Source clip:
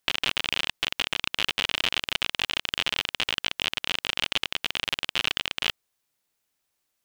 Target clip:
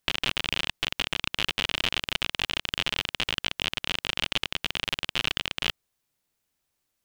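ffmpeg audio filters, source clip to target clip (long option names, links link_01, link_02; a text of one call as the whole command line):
ffmpeg -i in.wav -af "lowshelf=frequency=260:gain=8,volume=-1.5dB" out.wav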